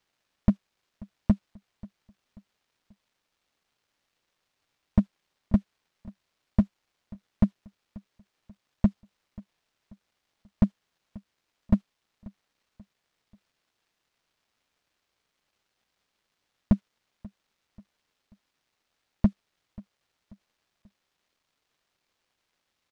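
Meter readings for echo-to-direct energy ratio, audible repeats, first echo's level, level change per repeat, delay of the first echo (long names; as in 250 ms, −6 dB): −21.0 dB, 2, −22.0 dB, −7.5 dB, 536 ms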